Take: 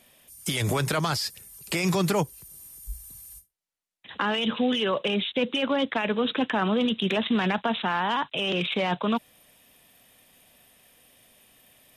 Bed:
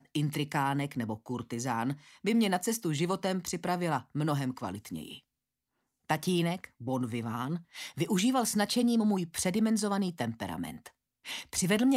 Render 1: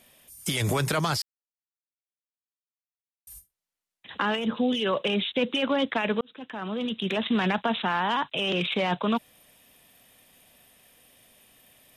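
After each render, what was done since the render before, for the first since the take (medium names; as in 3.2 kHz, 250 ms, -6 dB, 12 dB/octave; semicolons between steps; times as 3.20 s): 1.22–3.27 s: mute; 4.35–4.84 s: peaking EQ 4.6 kHz -> 1.1 kHz -12 dB 1.2 oct; 6.21–7.42 s: fade in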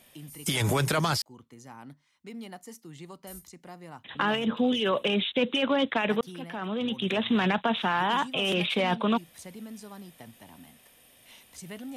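add bed -14.5 dB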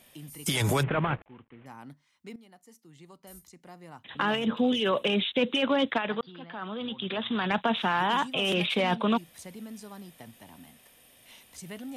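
0.83–1.66 s: CVSD coder 16 kbps; 2.36–4.48 s: fade in, from -15 dB; 5.98–7.51 s: rippled Chebyshev low-pass 4.8 kHz, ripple 6 dB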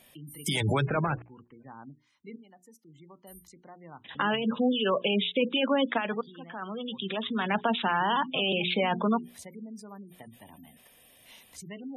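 spectral gate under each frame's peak -20 dB strong; hum notches 60/120/180/240/300/360/420 Hz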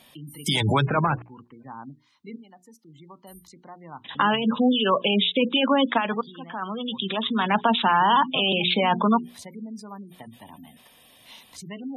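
graphic EQ 125/250/1000/4000 Hz +4/+5/+9/+9 dB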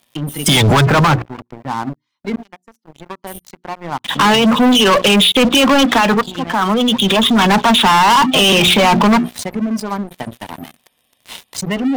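waveshaping leveller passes 5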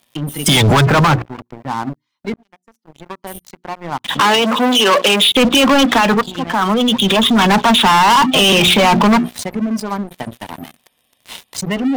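2.34–3.25 s: fade in equal-power; 4.20–5.32 s: high-pass 300 Hz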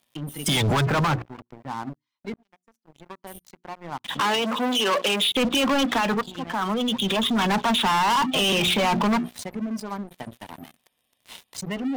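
trim -10.5 dB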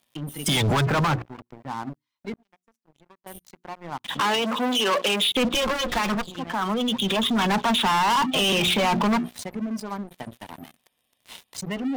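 2.32–3.26 s: fade out, to -20.5 dB; 5.54–6.34 s: comb filter that takes the minimum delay 5.6 ms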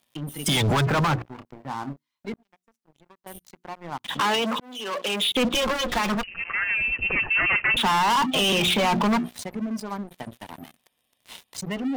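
1.33–2.32 s: doubling 29 ms -9.5 dB; 4.60–5.38 s: fade in; 6.23–7.77 s: frequency inversion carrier 2.9 kHz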